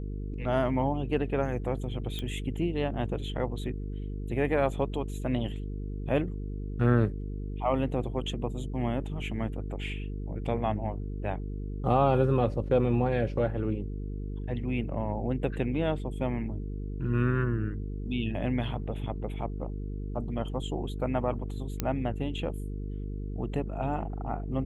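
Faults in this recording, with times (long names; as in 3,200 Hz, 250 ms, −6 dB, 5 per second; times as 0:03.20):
mains buzz 50 Hz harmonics 9 −35 dBFS
0:02.19: click −21 dBFS
0:21.80: click −13 dBFS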